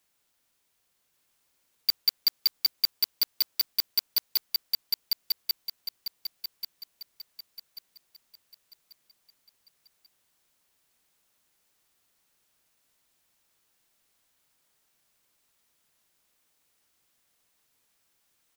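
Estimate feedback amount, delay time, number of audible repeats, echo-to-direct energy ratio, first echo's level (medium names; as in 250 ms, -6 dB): 38%, 1138 ms, 4, -3.0 dB, -3.5 dB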